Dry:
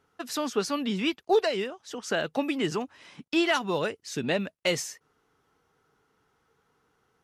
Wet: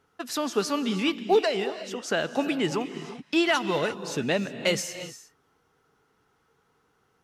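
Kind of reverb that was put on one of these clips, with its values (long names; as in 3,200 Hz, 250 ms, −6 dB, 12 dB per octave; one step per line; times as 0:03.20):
reverb whose tail is shaped and stops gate 380 ms rising, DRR 11 dB
level +1.5 dB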